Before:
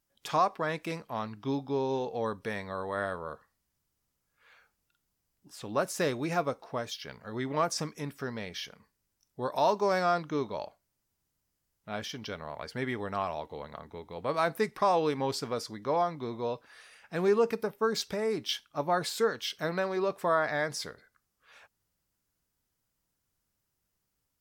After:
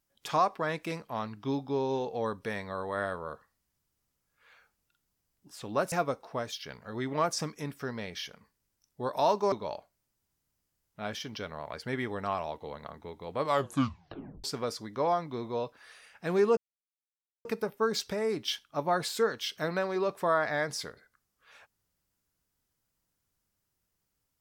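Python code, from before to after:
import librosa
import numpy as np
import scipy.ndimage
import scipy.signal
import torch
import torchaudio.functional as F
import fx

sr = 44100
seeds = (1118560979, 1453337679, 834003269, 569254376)

y = fx.edit(x, sr, fx.cut(start_s=5.92, length_s=0.39),
    fx.cut(start_s=9.91, length_s=0.5),
    fx.tape_stop(start_s=14.3, length_s=1.03),
    fx.insert_silence(at_s=17.46, length_s=0.88), tone=tone)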